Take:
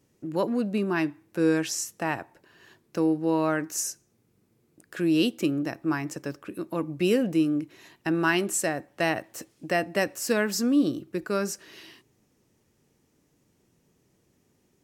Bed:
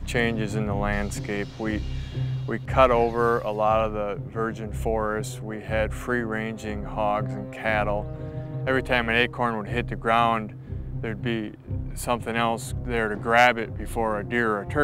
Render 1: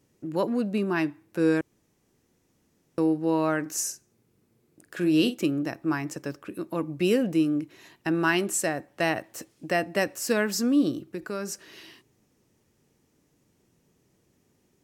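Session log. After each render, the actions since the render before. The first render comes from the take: 1.61–2.98 s: room tone; 3.61–5.38 s: doubling 45 ms -10.5 dB; 11.02–11.52 s: compression 2:1, threshold -32 dBFS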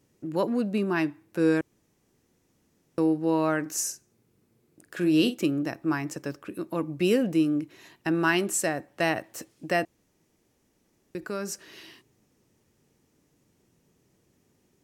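9.85–11.15 s: room tone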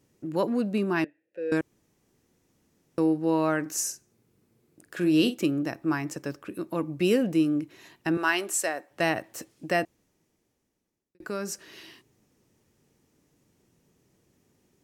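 1.04–1.52 s: vowel filter e; 8.17–8.91 s: high-pass 460 Hz; 9.81–11.20 s: fade out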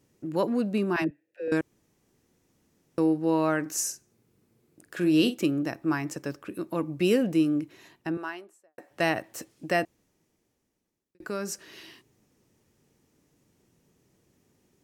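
0.96–1.48 s: phase dispersion lows, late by 65 ms, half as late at 340 Hz; 7.62–8.78 s: studio fade out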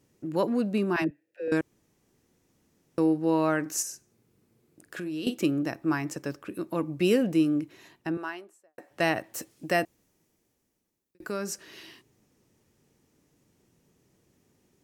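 3.82–5.27 s: compression 4:1, threshold -33 dBFS; 9.34–11.32 s: treble shelf 8.8 kHz +7 dB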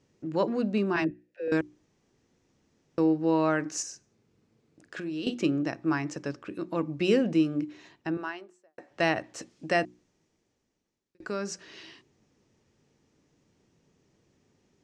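low-pass 6.7 kHz 24 dB/octave; hum notches 60/120/180/240/300/360 Hz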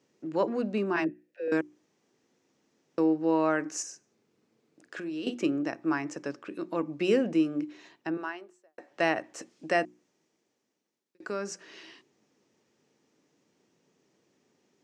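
high-pass 230 Hz 12 dB/octave; dynamic bell 4 kHz, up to -6 dB, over -53 dBFS, Q 1.6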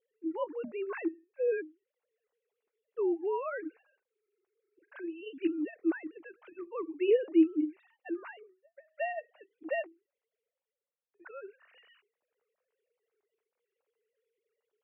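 formants replaced by sine waves; flange 0.17 Hz, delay 0.4 ms, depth 4.7 ms, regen -51%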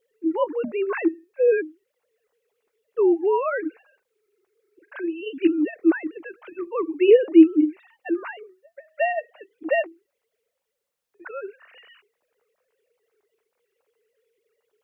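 trim +11.5 dB

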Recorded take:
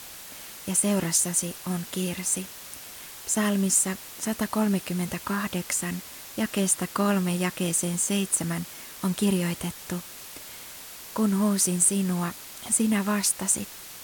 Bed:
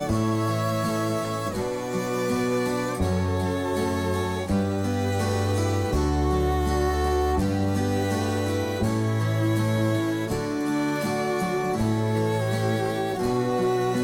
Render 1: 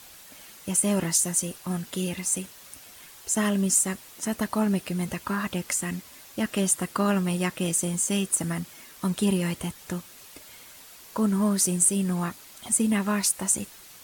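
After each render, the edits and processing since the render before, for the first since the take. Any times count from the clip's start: noise reduction 7 dB, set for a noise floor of -43 dBFS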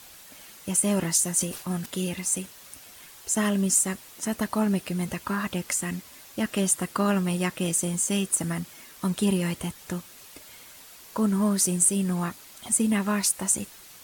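1.38–1.86 s: decay stretcher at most 92 dB/s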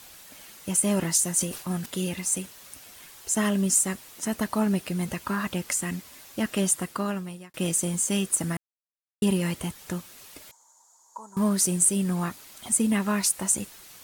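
6.68–7.54 s: fade out; 8.57–9.22 s: mute; 10.51–11.37 s: two resonant band-passes 2.5 kHz, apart 2.9 oct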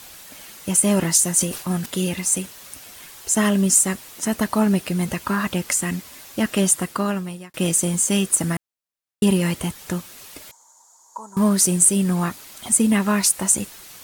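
trim +6 dB

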